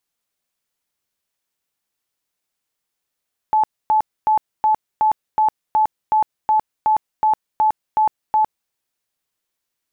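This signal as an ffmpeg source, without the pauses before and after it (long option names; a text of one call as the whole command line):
ffmpeg -f lavfi -i "aevalsrc='0.251*sin(2*PI*864*mod(t,0.37))*lt(mod(t,0.37),92/864)':duration=5.18:sample_rate=44100" out.wav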